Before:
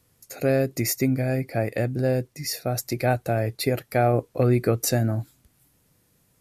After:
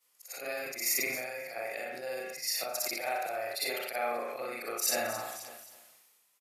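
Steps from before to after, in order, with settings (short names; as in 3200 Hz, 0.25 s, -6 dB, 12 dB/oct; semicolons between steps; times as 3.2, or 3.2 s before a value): short-time reversal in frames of 0.126 s; HPF 1100 Hz 12 dB/oct; bell 1600 Hz -7 dB 0.44 oct; feedback echo 0.266 s, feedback 41%, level -22 dB; on a send at -1.5 dB: reverb RT60 0.55 s, pre-delay 34 ms; on the sum: sustainer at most 31 dB/s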